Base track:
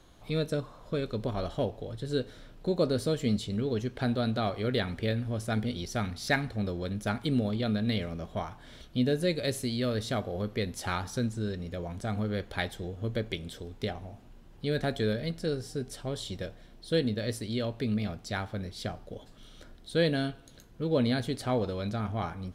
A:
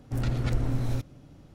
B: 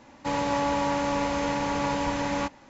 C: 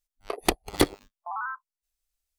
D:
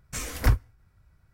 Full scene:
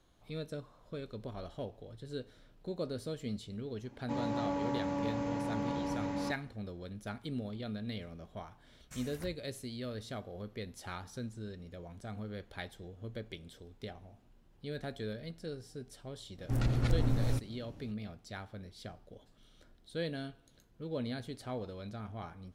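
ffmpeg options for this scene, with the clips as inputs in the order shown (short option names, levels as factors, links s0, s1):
-filter_complex "[0:a]volume=0.282[s0];[2:a]equalizer=f=220:w=0.33:g=12.5[s1];[4:a]acompressor=threshold=0.0398:ratio=6:attack=3.2:release=140:knee=1:detection=peak[s2];[s1]atrim=end=2.69,asetpts=PTS-STARTPTS,volume=0.133,afade=t=in:d=0.004:c=hsin,afade=t=out:st=2.686:d=0.004:c=hsin,adelay=3840[s3];[s2]atrim=end=1.33,asetpts=PTS-STARTPTS,volume=0.168,afade=t=in:d=0.004:c=hsin,afade=t=out:st=1.326:d=0.004:c=hsin,adelay=8780[s4];[1:a]atrim=end=1.54,asetpts=PTS-STARTPTS,volume=0.75,afade=t=in:d=0.004:c=hsin,afade=t=out:st=1.536:d=0.004:c=hsin,adelay=16380[s5];[s0][s3][s4][s5]amix=inputs=4:normalize=0"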